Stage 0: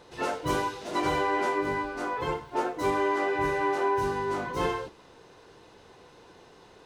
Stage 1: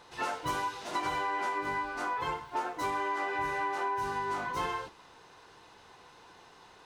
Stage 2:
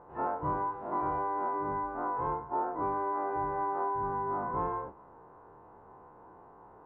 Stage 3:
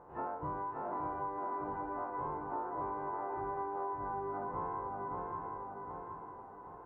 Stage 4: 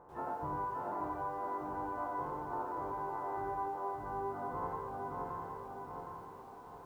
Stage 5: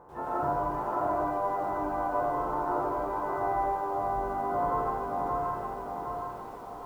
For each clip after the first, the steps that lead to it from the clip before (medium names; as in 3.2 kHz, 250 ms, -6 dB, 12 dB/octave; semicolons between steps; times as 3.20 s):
resonant low shelf 680 Hz -6 dB, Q 1.5; compression, threshold -29 dBFS, peak gain reduction 6 dB
every event in the spectrogram widened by 60 ms; low-pass 1.1 kHz 24 dB/octave
on a send: shuffle delay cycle 764 ms, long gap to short 3:1, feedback 42%, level -5.5 dB; on the sum: compression 3:1, threshold -35 dBFS, peak gain reduction 7.5 dB; trim -2 dB
bit-crushed delay 89 ms, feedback 35%, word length 11-bit, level -3.5 dB; trim -1.5 dB
reverberation RT60 0.40 s, pre-delay 110 ms, DRR -4 dB; trim +4.5 dB